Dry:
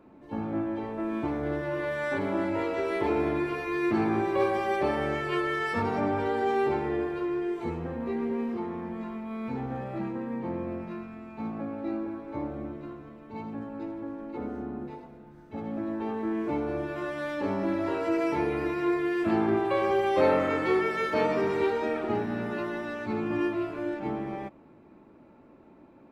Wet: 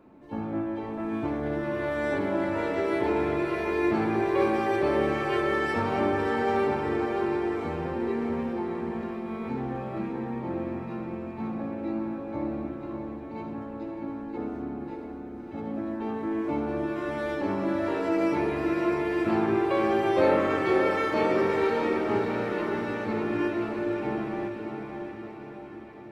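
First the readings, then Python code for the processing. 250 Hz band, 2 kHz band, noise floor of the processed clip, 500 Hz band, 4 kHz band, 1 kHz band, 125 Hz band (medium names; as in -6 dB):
+1.5 dB, +1.5 dB, -40 dBFS, +1.5 dB, +1.5 dB, +1.5 dB, +1.5 dB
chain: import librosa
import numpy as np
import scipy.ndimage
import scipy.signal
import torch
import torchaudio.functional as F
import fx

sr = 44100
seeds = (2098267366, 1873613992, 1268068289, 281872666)

y = fx.echo_diffused(x, sr, ms=628, feedback_pct=57, wet_db=-5.5)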